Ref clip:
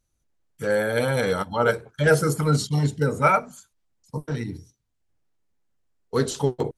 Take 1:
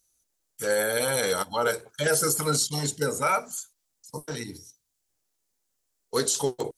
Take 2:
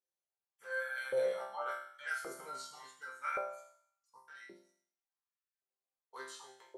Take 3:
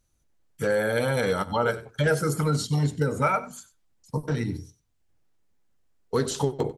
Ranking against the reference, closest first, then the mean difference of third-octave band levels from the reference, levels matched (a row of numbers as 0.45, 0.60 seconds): 3, 1, 2; 2.5, 6.0, 11.5 decibels